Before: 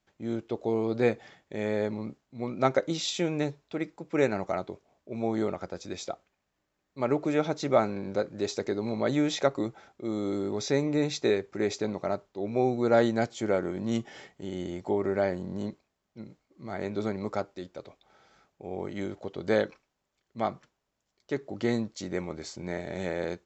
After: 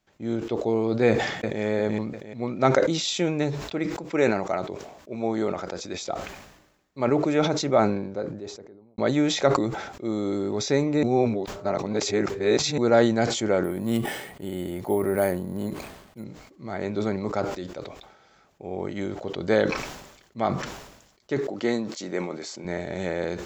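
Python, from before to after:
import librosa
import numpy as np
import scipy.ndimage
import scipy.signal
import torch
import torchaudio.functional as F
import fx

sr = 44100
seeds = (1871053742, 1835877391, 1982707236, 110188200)

y = fx.echo_throw(x, sr, start_s=1.08, length_s=0.55, ms=350, feedback_pct=35, wet_db=-2.5)
y = fx.low_shelf(y, sr, hz=150.0, db=-7.0, at=(3.95, 6.02))
y = fx.studio_fade_out(y, sr, start_s=7.36, length_s=1.62)
y = fx.resample_bad(y, sr, factor=4, down='filtered', up='hold', at=(13.64, 16.24))
y = fx.highpass(y, sr, hz=230.0, slope=12, at=(21.4, 22.65))
y = fx.edit(y, sr, fx.reverse_span(start_s=11.03, length_s=1.75), tone=tone)
y = fx.sustainer(y, sr, db_per_s=60.0)
y = F.gain(torch.from_numpy(y), 3.5).numpy()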